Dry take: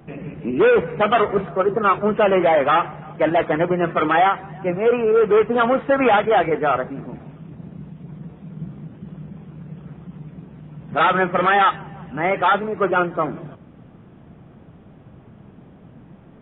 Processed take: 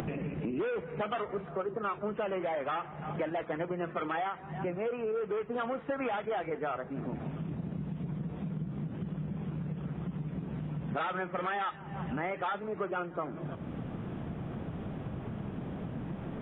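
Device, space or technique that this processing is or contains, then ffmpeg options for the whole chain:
upward and downward compression: -af "acompressor=mode=upward:threshold=-23dB:ratio=2.5,acompressor=threshold=-28dB:ratio=6,volume=-4dB"

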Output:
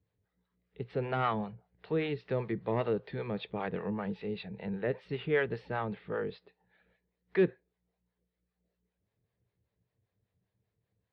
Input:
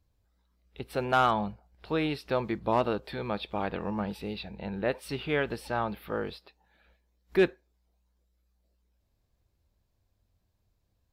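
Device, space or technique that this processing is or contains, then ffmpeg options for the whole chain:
guitar amplifier with harmonic tremolo: -filter_complex "[0:a]acrossover=split=490[a][b];[a]aeval=exprs='val(0)*(1-0.7/2+0.7/2*cos(2*PI*5.1*n/s))':c=same[c];[b]aeval=exprs='val(0)*(1-0.7/2-0.7/2*cos(2*PI*5.1*n/s))':c=same[d];[c][d]amix=inputs=2:normalize=0,asoftclip=type=tanh:threshold=-16dB,highpass=91,equalizer=f=120:t=q:w=4:g=10,equalizer=f=180:t=q:w=4:g=8,equalizer=f=440:t=q:w=4:g=10,equalizer=f=1.9k:t=q:w=4:g=8,lowpass=f=3.9k:w=0.5412,lowpass=f=3.9k:w=1.3066,volume=-3.5dB"

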